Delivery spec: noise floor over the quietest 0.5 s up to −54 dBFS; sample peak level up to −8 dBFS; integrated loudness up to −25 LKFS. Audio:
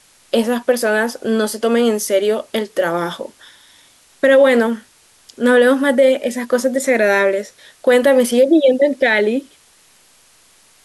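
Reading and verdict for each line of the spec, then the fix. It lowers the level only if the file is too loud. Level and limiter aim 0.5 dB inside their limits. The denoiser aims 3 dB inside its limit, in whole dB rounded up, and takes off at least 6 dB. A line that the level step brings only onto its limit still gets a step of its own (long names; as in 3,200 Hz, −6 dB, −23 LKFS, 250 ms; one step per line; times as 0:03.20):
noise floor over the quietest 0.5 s −51 dBFS: out of spec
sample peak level −4.0 dBFS: out of spec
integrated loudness −15.5 LKFS: out of spec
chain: level −10 dB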